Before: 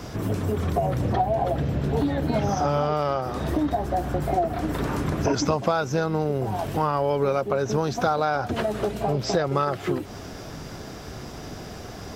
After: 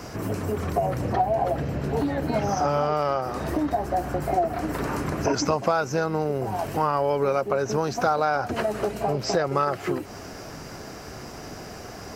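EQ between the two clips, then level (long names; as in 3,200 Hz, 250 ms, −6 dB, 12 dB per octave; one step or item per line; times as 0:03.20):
low-shelf EQ 270 Hz −6.5 dB
parametric band 3,500 Hz −10 dB 0.27 octaves
+1.5 dB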